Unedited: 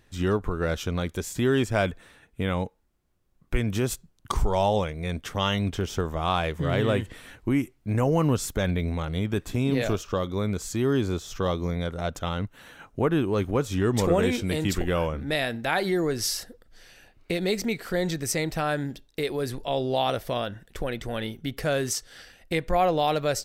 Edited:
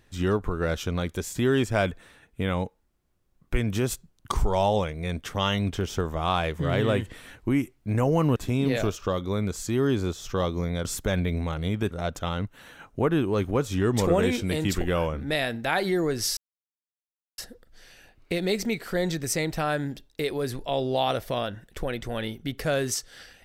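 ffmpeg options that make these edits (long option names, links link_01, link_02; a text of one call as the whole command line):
ffmpeg -i in.wav -filter_complex "[0:a]asplit=5[link_01][link_02][link_03][link_04][link_05];[link_01]atrim=end=8.362[link_06];[link_02]atrim=start=9.418:end=11.912[link_07];[link_03]atrim=start=8.358:end=9.422[link_08];[link_04]atrim=start=11.908:end=16.37,asetpts=PTS-STARTPTS,afade=type=out:start_time=4.458:duration=0.004:curve=hsin,apad=pad_dur=1.01[link_09];[link_05]atrim=start=16.37,asetpts=PTS-STARTPTS,afade=type=in:duration=0.004:curve=hsin[link_10];[link_06][link_07]acrossfade=duration=0.004:curve1=hsin:curve2=hsin[link_11];[link_11][link_08]acrossfade=duration=0.004:curve1=hsin:curve2=hsin[link_12];[link_09][link_10]concat=n=2:v=0:a=1[link_13];[link_12][link_13]acrossfade=duration=0.004:curve1=hsin:curve2=hsin" out.wav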